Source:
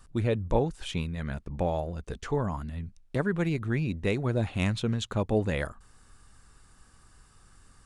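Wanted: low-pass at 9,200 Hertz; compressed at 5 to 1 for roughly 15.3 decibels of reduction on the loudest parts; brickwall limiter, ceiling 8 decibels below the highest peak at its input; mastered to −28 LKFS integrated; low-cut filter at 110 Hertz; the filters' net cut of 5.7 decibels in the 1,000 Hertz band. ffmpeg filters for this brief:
ffmpeg -i in.wav -af "highpass=110,lowpass=9200,equalizer=frequency=1000:width_type=o:gain=-8,acompressor=threshold=-41dB:ratio=5,volume=18dB,alimiter=limit=-16.5dB:level=0:latency=1" out.wav

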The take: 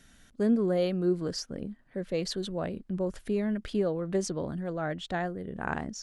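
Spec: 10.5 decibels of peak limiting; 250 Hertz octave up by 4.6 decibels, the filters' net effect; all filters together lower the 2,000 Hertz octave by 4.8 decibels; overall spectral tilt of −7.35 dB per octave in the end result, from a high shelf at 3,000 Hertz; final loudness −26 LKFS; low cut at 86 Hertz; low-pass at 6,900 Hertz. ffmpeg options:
ffmpeg -i in.wav -af "highpass=86,lowpass=6900,equalizer=frequency=250:width_type=o:gain=6.5,equalizer=frequency=2000:width_type=o:gain=-4.5,highshelf=frequency=3000:gain=-6.5,volume=5.5dB,alimiter=limit=-16dB:level=0:latency=1" out.wav

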